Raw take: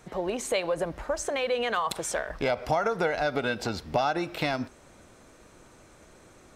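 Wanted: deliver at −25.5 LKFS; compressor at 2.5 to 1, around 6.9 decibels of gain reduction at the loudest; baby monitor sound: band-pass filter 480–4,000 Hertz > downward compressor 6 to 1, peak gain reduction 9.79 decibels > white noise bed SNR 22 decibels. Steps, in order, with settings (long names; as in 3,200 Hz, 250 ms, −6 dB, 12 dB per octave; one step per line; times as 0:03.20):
downward compressor 2.5 to 1, threshold −32 dBFS
band-pass filter 480–4,000 Hz
downward compressor 6 to 1, threshold −39 dBFS
white noise bed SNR 22 dB
level +17.5 dB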